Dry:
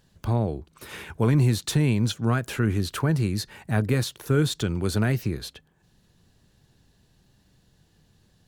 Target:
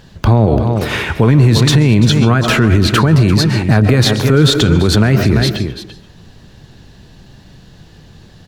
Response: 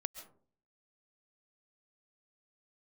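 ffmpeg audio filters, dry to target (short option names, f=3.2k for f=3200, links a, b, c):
-filter_complex "[0:a]aecho=1:1:340:0.237,asplit=2[a][b];[1:a]atrim=start_sample=2205,lowpass=6.2k[c];[b][c]afir=irnorm=-1:irlink=0,volume=6.5dB[d];[a][d]amix=inputs=2:normalize=0,alimiter=level_in=13dB:limit=-1dB:release=50:level=0:latency=1,volume=-1dB"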